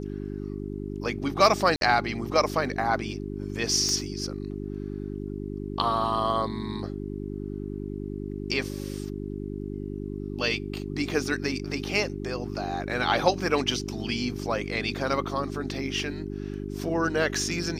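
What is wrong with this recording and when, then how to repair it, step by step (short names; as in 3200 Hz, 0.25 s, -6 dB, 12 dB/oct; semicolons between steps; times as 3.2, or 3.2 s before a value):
hum 50 Hz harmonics 8 -34 dBFS
1.76–1.81 gap 52 ms
3.89 pop -15 dBFS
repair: de-click; de-hum 50 Hz, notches 8; interpolate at 1.76, 52 ms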